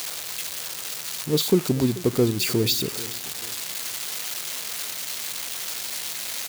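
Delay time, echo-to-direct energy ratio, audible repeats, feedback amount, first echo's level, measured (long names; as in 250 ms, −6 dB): 436 ms, −17.5 dB, 2, 34%, −18.0 dB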